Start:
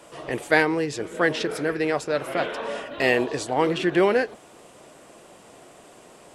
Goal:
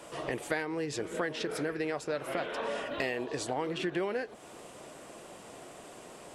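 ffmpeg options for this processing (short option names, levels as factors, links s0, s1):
-af "acompressor=threshold=0.0282:ratio=5"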